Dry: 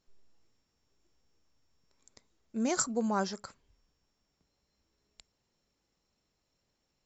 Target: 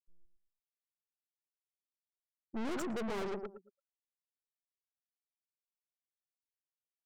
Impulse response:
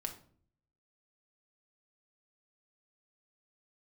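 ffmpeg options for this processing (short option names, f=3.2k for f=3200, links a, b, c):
-filter_complex "[0:a]lowpass=4.3k,afftfilt=real='re*gte(hypot(re,im),0.0282)':imag='im*gte(hypot(re,im),0.0282)':win_size=1024:overlap=0.75,equalizer=f=400:w=1.1:g=14.5,asplit=2[a][b];[b]adelay=113,lowpass=f=880:p=1,volume=-8.5dB,asplit=2[c][d];[d]adelay=113,lowpass=f=880:p=1,volume=0.25,asplit=2[e][f];[f]adelay=113,lowpass=f=880:p=1,volume=0.25[g];[c][e][g]amix=inputs=3:normalize=0[h];[a][h]amix=inputs=2:normalize=0,aeval=exprs='(tanh(79.4*val(0)+0.45)-tanh(0.45))/79.4':c=same,volume=1.5dB"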